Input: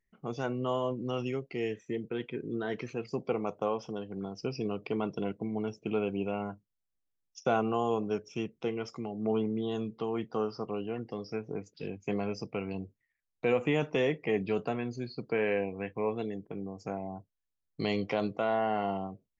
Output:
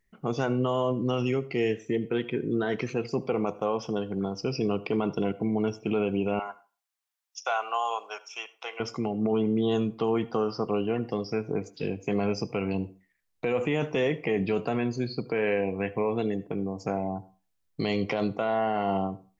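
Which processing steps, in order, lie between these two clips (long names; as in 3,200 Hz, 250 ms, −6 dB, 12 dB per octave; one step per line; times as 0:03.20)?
0:06.39–0:08.80: high-pass filter 760 Hz 24 dB per octave
brickwall limiter −25.5 dBFS, peak gain reduction 9.5 dB
convolution reverb RT60 0.35 s, pre-delay 65 ms, DRR 18 dB
level +8 dB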